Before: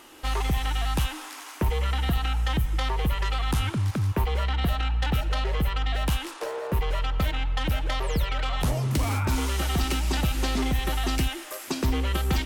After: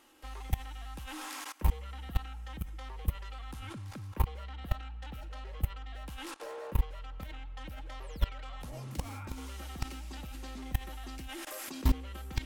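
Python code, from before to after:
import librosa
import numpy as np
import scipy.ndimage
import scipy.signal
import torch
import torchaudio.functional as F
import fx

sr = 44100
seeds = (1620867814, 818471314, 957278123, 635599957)

y = x + 0.33 * np.pad(x, (int(3.7 * sr / 1000.0), 0))[:len(x)]
y = fx.level_steps(y, sr, step_db=21)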